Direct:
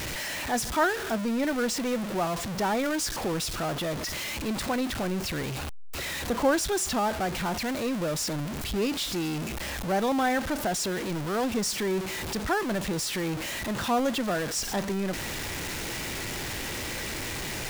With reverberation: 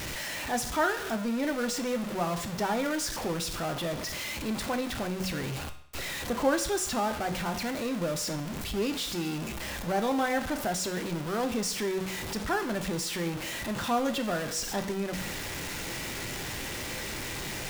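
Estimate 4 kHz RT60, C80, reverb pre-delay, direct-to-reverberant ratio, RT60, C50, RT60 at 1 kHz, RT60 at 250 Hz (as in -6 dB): 0.60 s, 14.5 dB, 6 ms, 6.5 dB, 0.65 s, 12.0 dB, 0.65 s, 0.65 s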